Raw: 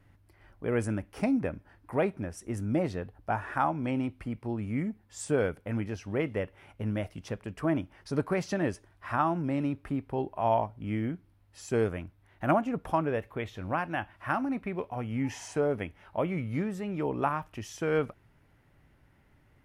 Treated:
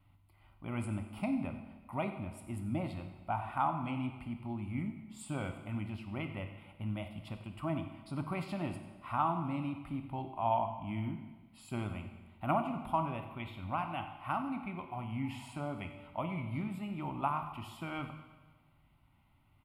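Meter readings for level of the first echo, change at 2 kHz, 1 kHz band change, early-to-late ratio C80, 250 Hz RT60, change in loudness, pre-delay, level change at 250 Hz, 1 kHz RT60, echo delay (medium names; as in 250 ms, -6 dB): -15.0 dB, -8.5 dB, -3.0 dB, 9.0 dB, 1.3 s, -6.5 dB, 28 ms, -6.5 dB, 1.3 s, 93 ms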